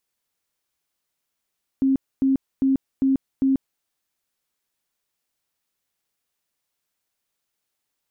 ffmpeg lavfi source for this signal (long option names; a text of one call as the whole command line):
ffmpeg -f lavfi -i "aevalsrc='0.168*sin(2*PI*268*mod(t,0.4))*lt(mod(t,0.4),37/268)':duration=2:sample_rate=44100" out.wav